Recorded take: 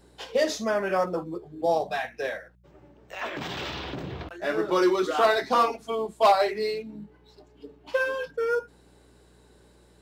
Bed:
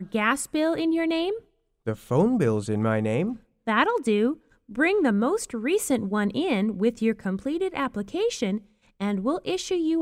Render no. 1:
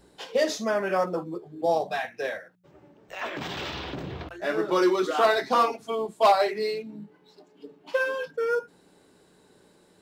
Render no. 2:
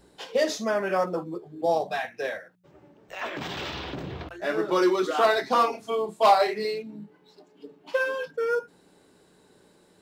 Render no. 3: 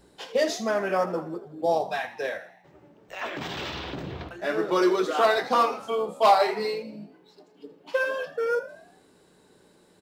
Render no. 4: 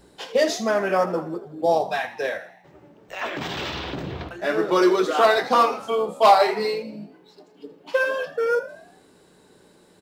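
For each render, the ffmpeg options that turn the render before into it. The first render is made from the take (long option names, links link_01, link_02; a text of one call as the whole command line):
ffmpeg -i in.wav -af "bandreject=frequency=60:width_type=h:width=4,bandreject=frequency=120:width_type=h:width=4" out.wav
ffmpeg -i in.wav -filter_complex "[0:a]asettb=1/sr,asplit=3[link_01][link_02][link_03];[link_01]atrim=end=5.704[link_04];[link_02]atrim=start=5.7:end=6.65,asetpts=PTS-STARTPTS,afade=type=in:duration=0.004:curve=qsin,afade=type=out:start_time=0.946:duration=0.004:curve=qsin,asplit=2[link_05][link_06];[link_06]adelay=29,volume=-6dB[link_07];[link_05][link_07]amix=inputs=2:normalize=0,atrim=end_sample=41895[link_08];[link_03]atrim=start=6.646[link_09];[link_04][link_08]acrossfade=duration=0.004:curve1=hsin:curve2=qsin[link_10];[link_10][link_09]acrossfade=duration=0.004:curve1=qsin:curve2=hsin" out.wav
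ffmpeg -i in.wav -filter_complex "[0:a]asplit=6[link_01][link_02][link_03][link_04][link_05][link_06];[link_02]adelay=81,afreqshift=57,volume=-16dB[link_07];[link_03]adelay=162,afreqshift=114,volume=-21.8dB[link_08];[link_04]adelay=243,afreqshift=171,volume=-27.7dB[link_09];[link_05]adelay=324,afreqshift=228,volume=-33.5dB[link_10];[link_06]adelay=405,afreqshift=285,volume=-39.4dB[link_11];[link_01][link_07][link_08][link_09][link_10][link_11]amix=inputs=6:normalize=0" out.wav
ffmpeg -i in.wav -af "volume=4dB" out.wav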